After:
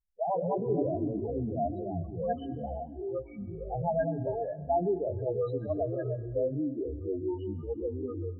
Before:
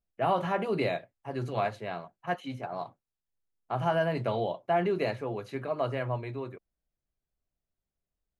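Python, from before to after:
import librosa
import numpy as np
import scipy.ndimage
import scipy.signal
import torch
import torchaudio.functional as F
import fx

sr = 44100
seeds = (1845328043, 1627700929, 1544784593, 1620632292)

y = fx.spec_topn(x, sr, count=4)
y = fx.echo_pitch(y, sr, ms=88, semitones=-5, count=3, db_per_echo=-3.0)
y = fx.rev_plate(y, sr, seeds[0], rt60_s=1.7, hf_ratio=0.65, predelay_ms=110, drr_db=18.0)
y = fx.end_taper(y, sr, db_per_s=540.0)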